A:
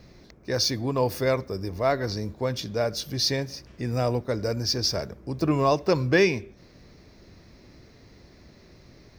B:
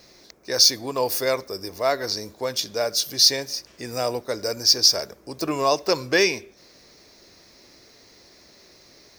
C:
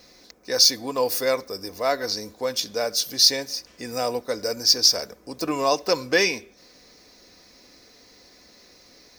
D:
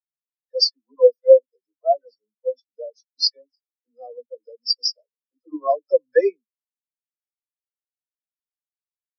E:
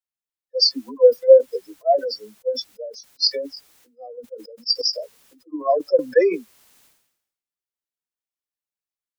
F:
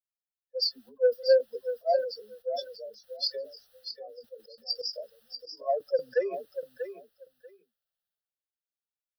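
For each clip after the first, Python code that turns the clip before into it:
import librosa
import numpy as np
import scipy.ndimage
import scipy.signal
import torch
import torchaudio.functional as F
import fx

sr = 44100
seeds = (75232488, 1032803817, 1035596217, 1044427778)

y1 = fx.bass_treble(x, sr, bass_db=-15, treble_db=11)
y1 = F.gain(torch.from_numpy(y1), 2.0).numpy()
y2 = y1 + 0.38 * np.pad(y1, (int(4.0 * sr / 1000.0), 0))[:len(y1)]
y2 = F.gain(torch.from_numpy(y2), -1.0).numpy()
y3 = fx.dispersion(y2, sr, late='lows', ms=92.0, hz=330.0)
y3 = fx.spectral_expand(y3, sr, expansion=4.0)
y4 = fx.sustainer(y3, sr, db_per_s=69.0)
y5 = 10.0 ** (-3.0 / 20.0) * np.tanh(y4 / 10.0 ** (-3.0 / 20.0))
y5 = fx.fixed_phaser(y5, sr, hz=1500.0, stages=8)
y5 = fx.echo_feedback(y5, sr, ms=638, feedback_pct=16, wet_db=-9.5)
y5 = F.gain(torch.from_numpy(y5), -8.0).numpy()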